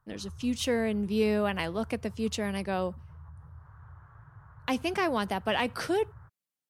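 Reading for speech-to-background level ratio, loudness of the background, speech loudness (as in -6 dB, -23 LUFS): 19.5 dB, -50.0 LUFS, -30.5 LUFS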